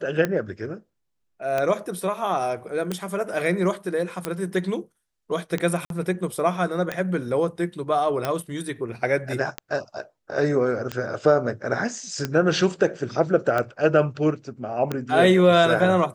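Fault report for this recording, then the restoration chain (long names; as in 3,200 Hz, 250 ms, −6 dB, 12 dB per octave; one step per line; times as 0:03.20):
scratch tick 45 rpm −11 dBFS
0:05.85–0:05.90: drop-out 52 ms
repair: click removal
repair the gap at 0:05.85, 52 ms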